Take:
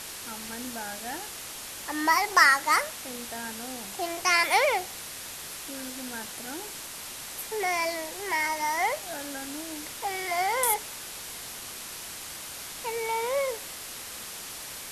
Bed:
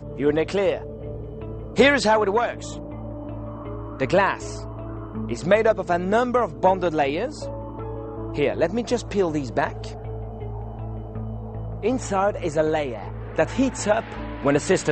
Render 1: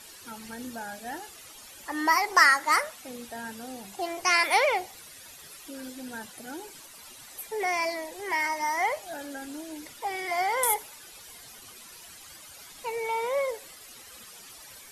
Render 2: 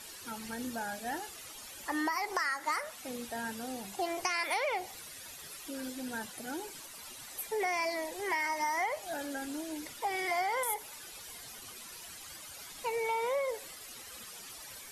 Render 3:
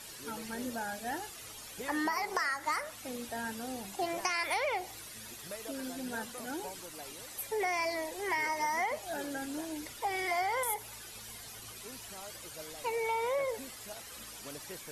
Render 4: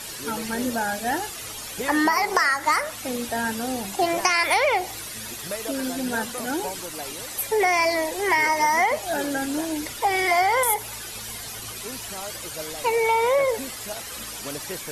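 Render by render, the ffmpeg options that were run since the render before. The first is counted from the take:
-af "afftdn=nr=13:nf=-40"
-af "alimiter=limit=-17dB:level=0:latency=1:release=326,acompressor=threshold=-29dB:ratio=6"
-filter_complex "[1:a]volume=-28dB[a];[0:a][a]amix=inputs=2:normalize=0"
-af "volume=12dB"

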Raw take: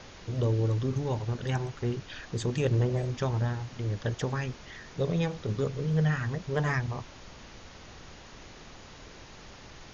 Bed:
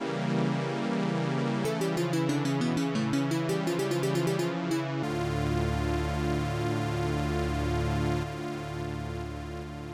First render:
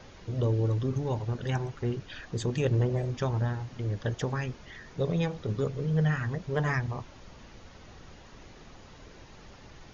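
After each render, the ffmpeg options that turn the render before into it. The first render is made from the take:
-af "afftdn=nr=6:nf=-49"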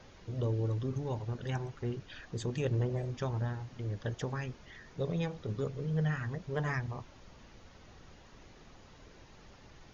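-af "volume=-5.5dB"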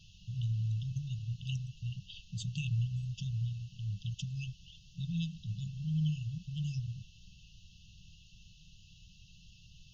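-af "afftfilt=real='re*(1-between(b*sr/4096,200,2600))':imag='im*(1-between(b*sr/4096,200,2600))':win_size=4096:overlap=0.75,equalizer=f=2k:t=o:w=0.79:g=14"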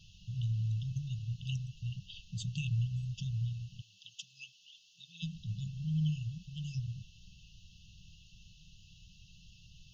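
-filter_complex "[0:a]asplit=3[a][b][c];[a]afade=t=out:st=3.8:d=0.02[d];[b]highpass=810,afade=t=in:st=3.8:d=0.02,afade=t=out:st=5.22:d=0.02[e];[c]afade=t=in:st=5.22:d=0.02[f];[d][e][f]amix=inputs=3:normalize=0,asettb=1/sr,asplit=3[g][h][i];[g]atrim=end=6.324[j];[h]atrim=start=6.32:end=6.75,asetpts=PTS-STARTPTS,afade=t=in:d=0.004:c=qsin,afade=t=out:st=0.426:d=0.004:c=qsin,equalizer=f=120:t=o:w=0.77:g=-7.5[k];[i]atrim=start=6.746[l];[j][k]acrossfade=d=0.004:c1=hsin:c2=qsin[m];[m][l]acrossfade=d=0.004:c1=qsin:c2=hsin"

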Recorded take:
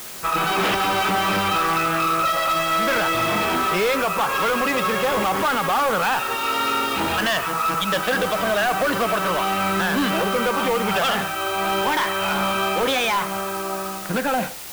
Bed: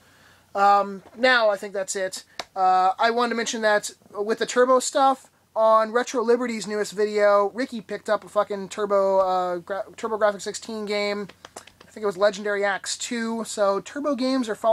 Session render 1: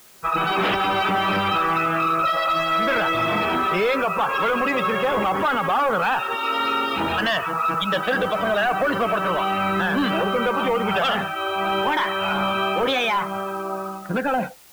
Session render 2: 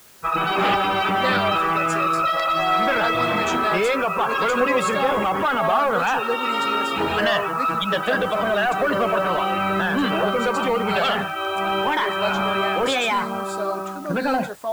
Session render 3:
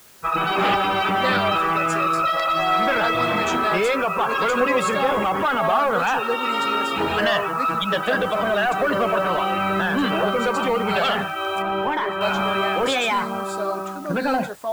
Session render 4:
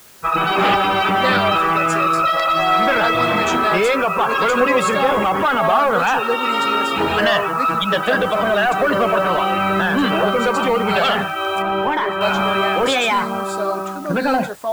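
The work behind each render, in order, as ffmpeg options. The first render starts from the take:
-af "afftdn=nr=14:nf=-29"
-filter_complex "[1:a]volume=-6.5dB[a];[0:a][a]amix=inputs=2:normalize=0"
-filter_complex "[0:a]asettb=1/sr,asplit=3[a][b][c];[a]atrim=end=11.624[d];[b]atrim=start=11.62:end=12.21,asetpts=PTS-STARTPTS,afade=t=in:d=0.004:c=qsin,afade=t=out:st=0.586:d=0.004:c=qsin,highshelf=f=2.4k:g=-10.5[e];[c]atrim=start=12.206[f];[d][e]acrossfade=d=0.004:c1=hsin:c2=qsin[g];[g][f]acrossfade=d=0.004:c1=qsin:c2=hsin"
-af "volume=4dB"

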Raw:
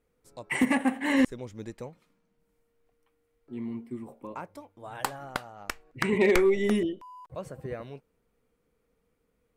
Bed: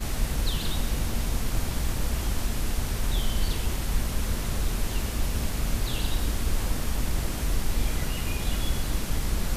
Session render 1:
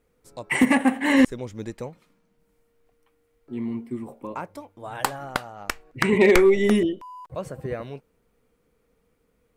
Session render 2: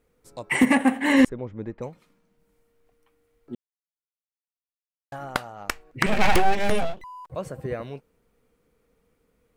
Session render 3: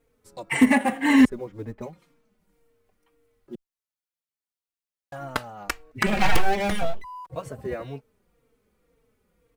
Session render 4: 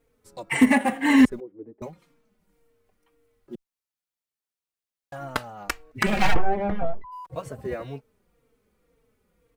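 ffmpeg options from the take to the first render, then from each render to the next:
-af "volume=6dB"
-filter_complex "[0:a]asplit=3[a][b][c];[a]afade=t=out:st=1.28:d=0.02[d];[b]lowpass=1.6k,afade=t=in:st=1.28:d=0.02,afade=t=out:st=1.81:d=0.02[e];[c]afade=t=in:st=1.81:d=0.02[f];[d][e][f]amix=inputs=3:normalize=0,asettb=1/sr,asplit=3[g][h][i];[g]atrim=end=6.064[j];[h]atrim=start=6.06:end=7.04,asetpts=PTS-STARTPTS,afade=t=in:d=0.004:c=qsin,afade=t=out:st=0.976:d=0.004:c=qsin,aeval=exprs='abs(val(0))':c=same[k];[i]atrim=start=7.036[l];[j][k]acrossfade=d=0.004:c1=hsin:c2=qsin[m];[m][l]acrossfade=d=0.004:c1=qsin:c2=hsin,asplit=3[n][o][p];[n]atrim=end=3.55,asetpts=PTS-STARTPTS,afade=t=out:st=3.546:d=0.004:c=hsin[q];[o]atrim=start=3.55:end=5.12,asetpts=PTS-STARTPTS,volume=0[r];[p]atrim=start=5.12,asetpts=PTS-STARTPTS,afade=t=in:d=0.004:c=hsin[s];[q][r][s]concat=n=3:v=0:a=1"
-filter_complex "[0:a]asplit=2[a][b];[b]acrusher=bits=5:mode=log:mix=0:aa=0.000001,volume=-9.5dB[c];[a][c]amix=inputs=2:normalize=0,asplit=2[d][e];[e]adelay=3.9,afreqshift=-1.9[f];[d][f]amix=inputs=2:normalize=1"
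-filter_complex "[0:a]asettb=1/sr,asplit=3[a][b][c];[a]atrim=end=1.404[d];[b]atrim=start=1.4:end=1.82,asetpts=PTS-STARTPTS,afade=t=in:d=0.004:c=qsin,afade=t=out:st=0.416:d=0.004:c=qsin,bandpass=f=360:t=q:w=3.7[e];[c]atrim=start=1.816[f];[d][e]acrossfade=d=0.004:c1=hsin:c2=qsin[g];[g][f]acrossfade=d=0.004:c1=qsin:c2=hsin,asplit=3[h][i][j];[h]afade=t=out:st=6.33:d=0.02[k];[i]lowpass=1.1k,afade=t=in:st=6.33:d=0.02,afade=t=out:st=7.11:d=0.02[l];[j]afade=t=in:st=7.11:d=0.02[m];[k][l][m]amix=inputs=3:normalize=0"

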